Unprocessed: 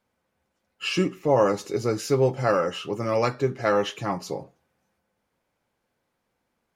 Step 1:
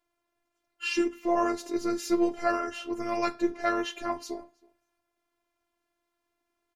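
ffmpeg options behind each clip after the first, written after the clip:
-filter_complex "[0:a]asplit=2[a][b];[b]adelay=320.7,volume=-26dB,highshelf=f=4k:g=-7.22[c];[a][c]amix=inputs=2:normalize=0,afftfilt=real='hypot(re,im)*cos(PI*b)':imag='0':win_size=512:overlap=0.75"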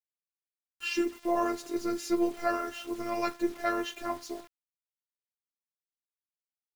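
-af "acrusher=bits=7:mix=0:aa=0.000001,volume=-2.5dB"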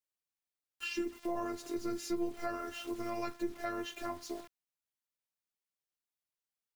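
-filter_complex "[0:a]acrossover=split=210[a][b];[b]acompressor=threshold=-38dB:ratio=3[c];[a][c]amix=inputs=2:normalize=0"

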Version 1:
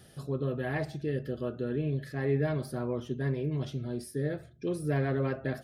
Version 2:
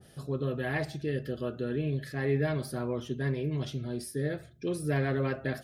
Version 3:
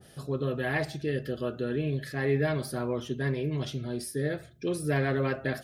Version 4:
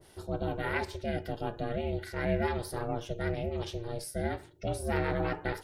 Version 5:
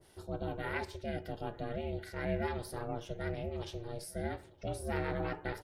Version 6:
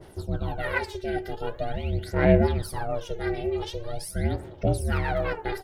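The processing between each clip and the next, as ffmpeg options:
-af "adynamicequalizer=threshold=0.00447:dfrequency=1500:dqfactor=0.7:tfrequency=1500:tqfactor=0.7:attack=5:release=100:ratio=0.375:range=2.5:mode=boostabove:tftype=highshelf"
-af "lowshelf=f=330:g=-3.5,volume=3.5dB"
-af "aeval=exprs='val(0)*sin(2*PI*230*n/s)':c=same"
-filter_complex "[0:a]asplit=2[a][b];[b]adelay=916,lowpass=f=1.7k:p=1,volume=-22dB,asplit=2[c][d];[d]adelay=916,lowpass=f=1.7k:p=1,volume=0.49,asplit=2[e][f];[f]adelay=916,lowpass=f=1.7k:p=1,volume=0.49[g];[a][c][e][g]amix=inputs=4:normalize=0,volume=-5dB"
-af "aphaser=in_gain=1:out_gain=1:delay=2.6:decay=0.72:speed=0.44:type=sinusoidal,volume=6dB"

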